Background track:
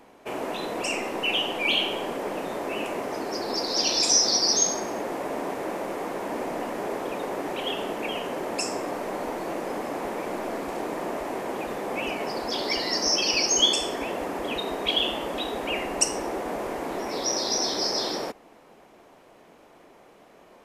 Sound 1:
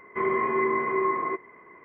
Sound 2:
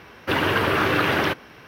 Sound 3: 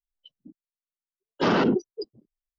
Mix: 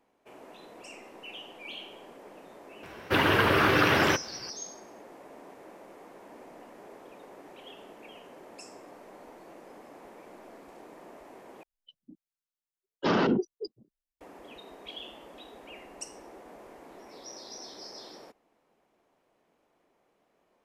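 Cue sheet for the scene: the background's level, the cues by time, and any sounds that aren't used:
background track −18.5 dB
0:02.83: mix in 2 −2 dB
0:11.63: overwrite with 3 −3.5 dB
not used: 1

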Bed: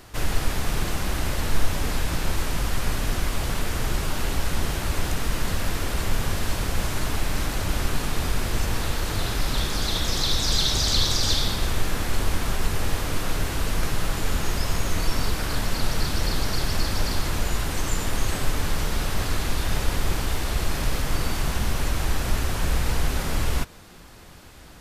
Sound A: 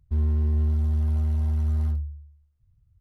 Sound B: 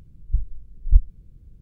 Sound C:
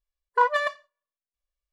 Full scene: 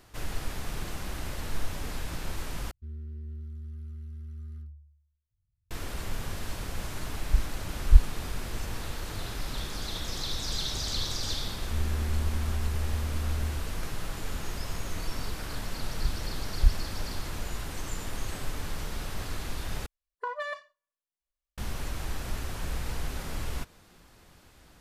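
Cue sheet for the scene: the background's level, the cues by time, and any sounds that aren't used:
bed −10 dB
0:02.71: overwrite with A −17 dB + linear-phase brick-wall band-stop 480–1,100 Hz
0:07.00: mix in B −1.5 dB
0:11.59: mix in A −8 dB + all-pass dispersion highs, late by 97 ms, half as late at 890 Hz
0:15.71: mix in B −7 dB
0:19.86: overwrite with C −5 dB + downward compressor, threshold −25 dBFS

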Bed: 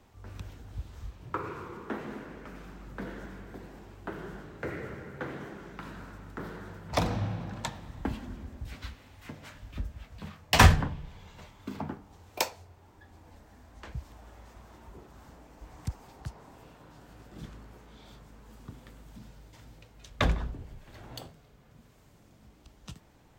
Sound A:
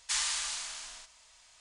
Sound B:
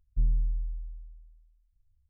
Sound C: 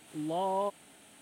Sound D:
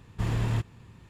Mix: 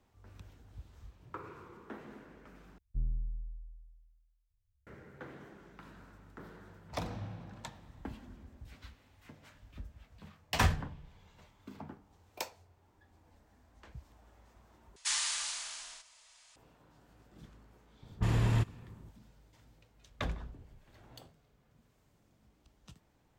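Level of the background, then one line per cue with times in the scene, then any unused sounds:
bed −10.5 dB
0:02.78: overwrite with B −4.5 dB + high-pass filter 54 Hz 6 dB per octave
0:14.96: overwrite with A −1.5 dB + low-shelf EQ 270 Hz −7.5 dB
0:18.02: mix in D −1 dB + low-pass that shuts in the quiet parts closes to 510 Hz, open at −26.5 dBFS
not used: C

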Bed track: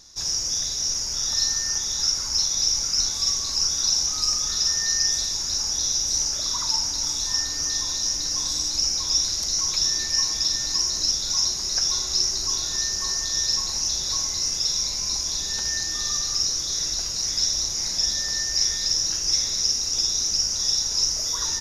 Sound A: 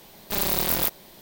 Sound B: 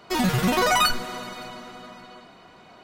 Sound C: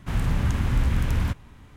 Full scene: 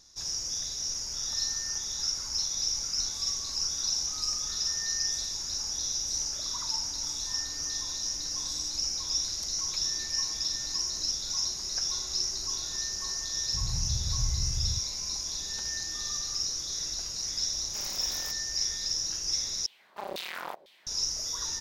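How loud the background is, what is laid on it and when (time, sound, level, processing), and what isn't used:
bed track −8 dB
0:13.46: mix in C −8 dB + inverse Chebyshev low-pass filter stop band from 890 Hz, stop band 80 dB
0:17.43: mix in A −16.5 dB + meter weighting curve A
0:19.66: overwrite with A + auto-filter band-pass saw down 2 Hz 460–3,800 Hz
not used: B

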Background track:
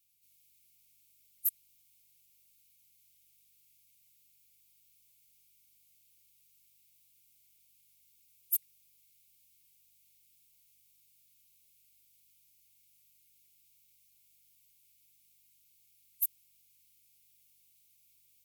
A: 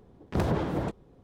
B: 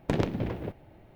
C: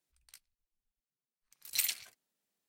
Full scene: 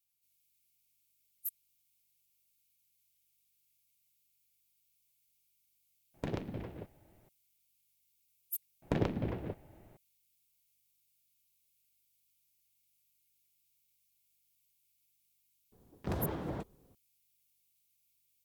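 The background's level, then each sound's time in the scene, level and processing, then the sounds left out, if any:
background track −8.5 dB
0:06.14: mix in B −10.5 dB
0:08.82: mix in B −4.5 dB + high-shelf EQ 3,600 Hz −5.5 dB
0:15.72: mix in A −9 dB
not used: C

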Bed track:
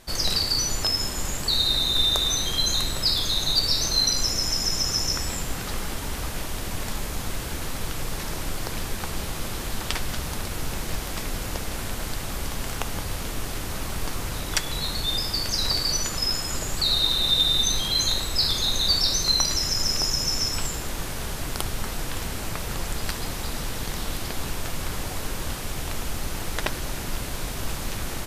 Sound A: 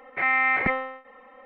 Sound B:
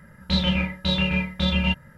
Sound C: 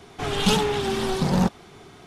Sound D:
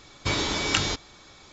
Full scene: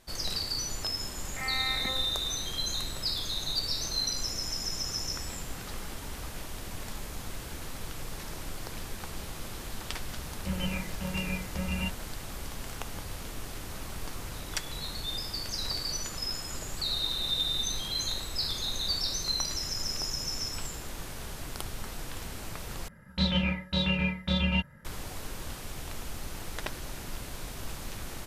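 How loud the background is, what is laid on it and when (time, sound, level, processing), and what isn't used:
bed track −9 dB
0:01.19: mix in A −13 dB
0:10.16: mix in B −10.5 dB + linear-phase brick-wall low-pass 3,100 Hz
0:22.88: overwrite with B −5 dB
not used: C, D

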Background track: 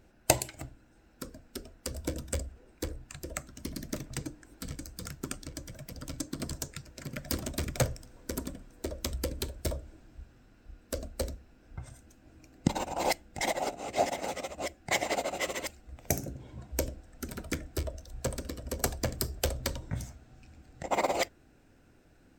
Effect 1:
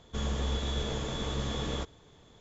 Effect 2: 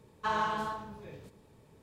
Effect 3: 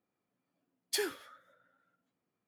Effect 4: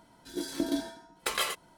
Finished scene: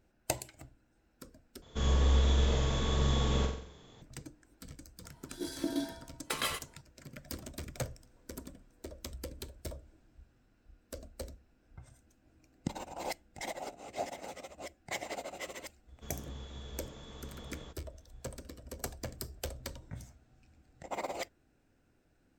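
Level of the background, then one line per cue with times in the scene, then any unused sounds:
background track −9.5 dB
0:01.62: overwrite with 1 −0.5 dB + flutter between parallel walls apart 7.7 metres, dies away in 0.59 s
0:05.04: mix in 4 −4 dB + flutter between parallel walls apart 11.6 metres, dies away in 0.23 s
0:15.88: mix in 1 −15.5 dB
not used: 2, 3

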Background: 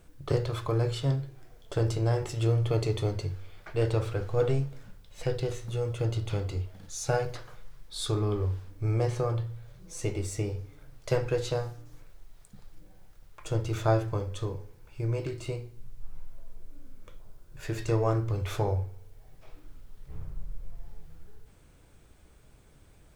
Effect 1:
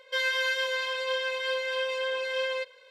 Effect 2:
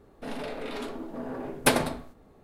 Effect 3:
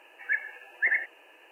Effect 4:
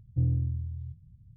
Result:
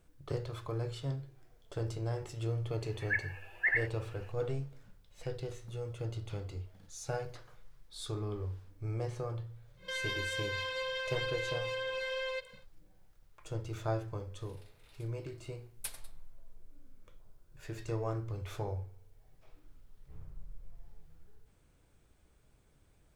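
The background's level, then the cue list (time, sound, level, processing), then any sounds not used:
background −9.5 dB
0:02.81: mix in 3 −4.5 dB
0:09.76: mix in 1 −1.5 dB, fades 0.10 s + brickwall limiter −28.5 dBFS
0:14.18: mix in 2 −14.5 dB + first difference
not used: 4

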